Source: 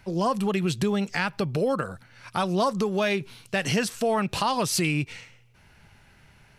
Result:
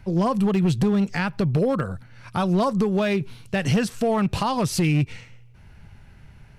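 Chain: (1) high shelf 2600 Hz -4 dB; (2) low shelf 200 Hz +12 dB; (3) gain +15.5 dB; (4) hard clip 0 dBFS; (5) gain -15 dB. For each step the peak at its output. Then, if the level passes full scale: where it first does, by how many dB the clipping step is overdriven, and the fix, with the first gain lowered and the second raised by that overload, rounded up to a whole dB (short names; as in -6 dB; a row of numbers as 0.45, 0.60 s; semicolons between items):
-12.0, -9.5, +6.0, 0.0, -15.0 dBFS; step 3, 6.0 dB; step 3 +9.5 dB, step 5 -9 dB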